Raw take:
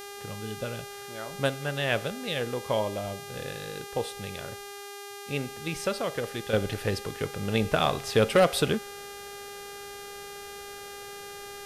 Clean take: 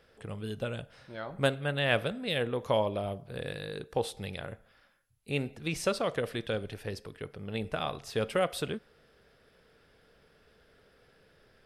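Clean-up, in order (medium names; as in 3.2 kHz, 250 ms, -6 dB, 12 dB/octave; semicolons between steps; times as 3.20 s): clip repair -13.5 dBFS; de-hum 403.2 Hz, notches 35; gain correction -9 dB, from 6.53 s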